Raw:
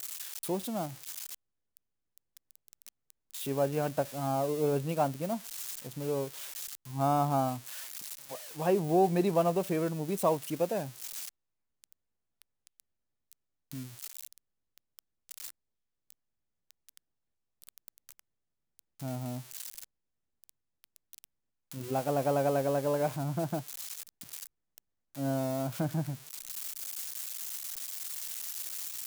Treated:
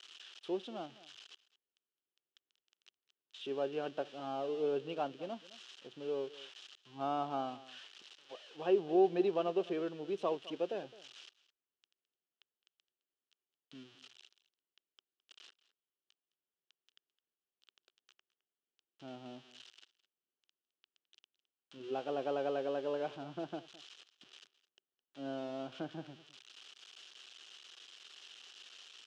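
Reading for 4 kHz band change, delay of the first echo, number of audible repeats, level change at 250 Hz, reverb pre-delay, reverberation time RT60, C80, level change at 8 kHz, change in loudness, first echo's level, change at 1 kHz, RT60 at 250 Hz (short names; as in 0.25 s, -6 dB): -3.5 dB, 0.212 s, 1, -7.0 dB, none, none, none, under -20 dB, -4.5 dB, -19.0 dB, -8.0 dB, none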